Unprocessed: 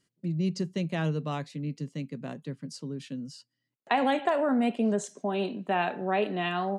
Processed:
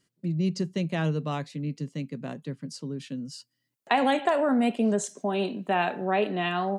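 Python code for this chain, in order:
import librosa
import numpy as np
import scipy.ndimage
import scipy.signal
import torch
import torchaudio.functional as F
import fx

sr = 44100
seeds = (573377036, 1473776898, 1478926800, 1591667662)

y = fx.high_shelf(x, sr, hz=fx.line((3.31, 5200.0), (6.05, 8500.0)), db=7.5, at=(3.31, 6.05), fade=0.02)
y = y * librosa.db_to_amplitude(2.0)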